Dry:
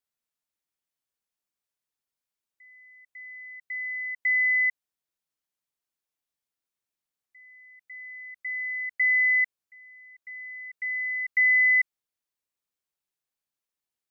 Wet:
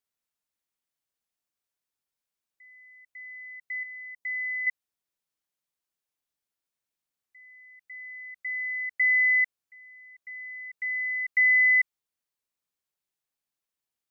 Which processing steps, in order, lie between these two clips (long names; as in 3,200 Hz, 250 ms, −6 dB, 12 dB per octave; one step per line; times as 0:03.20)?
0:03.83–0:04.67: parametric band 2,000 Hz −8.5 dB 1.4 octaves